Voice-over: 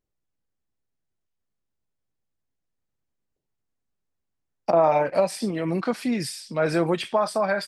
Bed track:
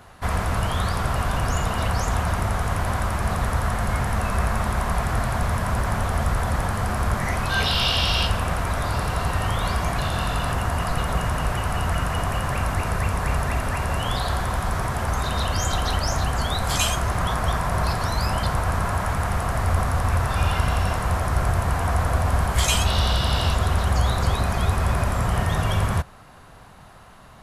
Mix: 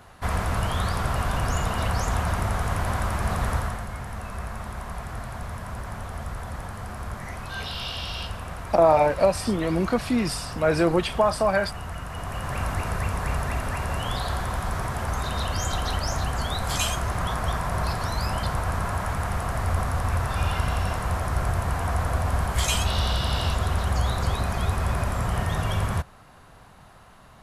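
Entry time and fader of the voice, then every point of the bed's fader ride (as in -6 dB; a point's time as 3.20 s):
4.05 s, +1.5 dB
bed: 3.55 s -2 dB
3.89 s -11 dB
12.05 s -11 dB
12.62 s -3.5 dB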